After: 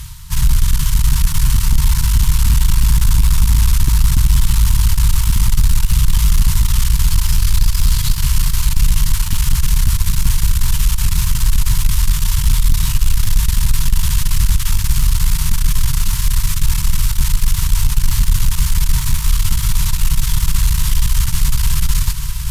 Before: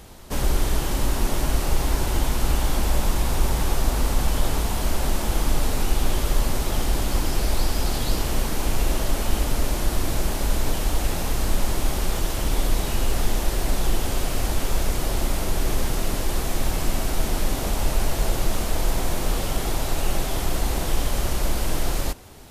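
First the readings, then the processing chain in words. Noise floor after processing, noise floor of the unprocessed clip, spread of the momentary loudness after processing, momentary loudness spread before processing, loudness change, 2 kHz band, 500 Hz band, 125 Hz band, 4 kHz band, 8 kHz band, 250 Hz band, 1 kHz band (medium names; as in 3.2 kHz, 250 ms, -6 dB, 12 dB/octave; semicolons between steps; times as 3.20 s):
-19 dBFS, -27 dBFS, 4 LU, 2 LU, +9.0 dB, +3.0 dB, under -20 dB, +11.5 dB, +6.5 dB, +8.5 dB, +0.5 dB, -2.5 dB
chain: echo that smears into a reverb 625 ms, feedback 59%, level -8.5 dB; in parallel at -10.5 dB: sample-and-hold 34×; on the sum: FFT band-reject 170–890 Hz; Chebyshev shaper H 5 -10 dB, 8 -18 dB, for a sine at -4 dBFS; reverse; upward compressor, threshold -21 dBFS; reverse; peaking EQ 1.2 kHz -9 dB 2.6 oct; trim +2 dB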